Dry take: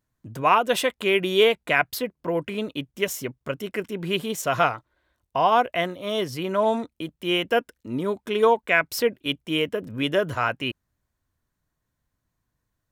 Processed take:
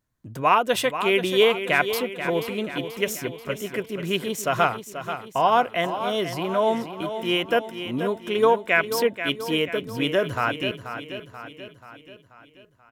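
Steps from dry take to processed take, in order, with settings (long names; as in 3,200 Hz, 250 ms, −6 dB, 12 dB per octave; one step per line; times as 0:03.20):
repeating echo 484 ms, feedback 53%, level −10 dB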